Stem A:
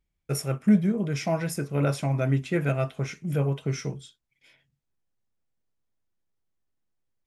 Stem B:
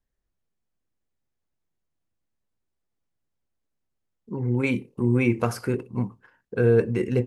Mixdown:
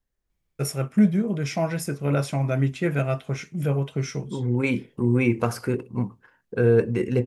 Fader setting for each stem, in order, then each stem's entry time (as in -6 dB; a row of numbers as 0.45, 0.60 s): +1.5, +0.5 dB; 0.30, 0.00 s